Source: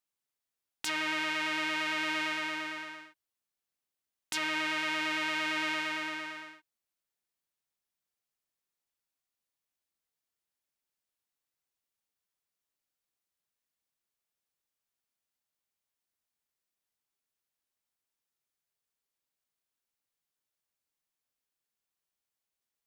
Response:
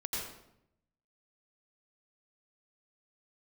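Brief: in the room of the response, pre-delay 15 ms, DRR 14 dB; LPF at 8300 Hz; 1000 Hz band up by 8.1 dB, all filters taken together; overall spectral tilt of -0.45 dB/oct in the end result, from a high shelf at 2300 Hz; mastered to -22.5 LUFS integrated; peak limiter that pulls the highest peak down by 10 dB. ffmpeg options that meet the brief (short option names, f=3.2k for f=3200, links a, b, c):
-filter_complex "[0:a]lowpass=8.3k,equalizer=f=1k:t=o:g=8,highshelf=f=2.3k:g=7.5,alimiter=limit=-21dB:level=0:latency=1,asplit=2[a][b];[1:a]atrim=start_sample=2205,adelay=15[c];[b][c]afir=irnorm=-1:irlink=0,volume=-17dB[d];[a][d]amix=inputs=2:normalize=0,volume=10dB"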